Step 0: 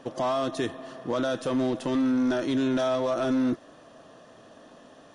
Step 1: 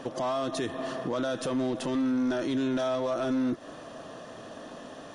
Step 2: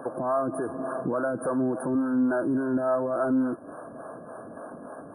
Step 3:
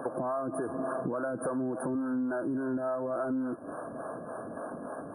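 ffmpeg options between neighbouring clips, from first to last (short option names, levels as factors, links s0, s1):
-af "alimiter=level_in=2.11:limit=0.0631:level=0:latency=1:release=147,volume=0.473,volume=2.37"
-filter_complex "[0:a]afftfilt=real='re*(1-between(b*sr/4096,1700,8900))':imag='im*(1-between(b*sr/4096,1700,8900))':win_size=4096:overlap=0.75,highpass=f=110:p=1,acrossover=split=410[s0][s1];[s0]aeval=exprs='val(0)*(1-0.7/2+0.7/2*cos(2*PI*3.5*n/s))':c=same[s2];[s1]aeval=exprs='val(0)*(1-0.7/2-0.7/2*cos(2*PI*3.5*n/s))':c=same[s3];[s2][s3]amix=inputs=2:normalize=0,volume=2.11"
-af "acompressor=threshold=0.0282:ratio=6,volume=1.19"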